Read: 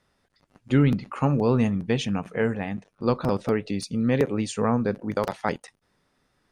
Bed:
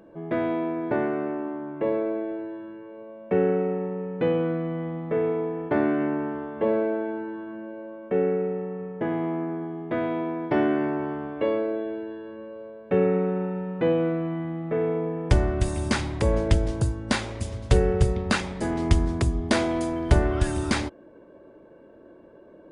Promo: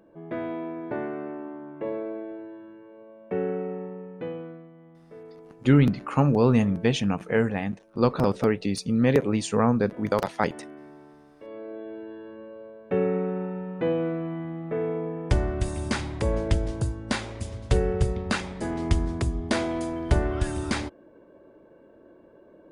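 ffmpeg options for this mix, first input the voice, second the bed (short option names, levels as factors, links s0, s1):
-filter_complex "[0:a]adelay=4950,volume=1.19[s0];[1:a]volume=3.76,afade=t=out:st=3.81:d=0.9:silence=0.188365,afade=t=in:st=11.44:d=0.78:silence=0.133352[s1];[s0][s1]amix=inputs=2:normalize=0"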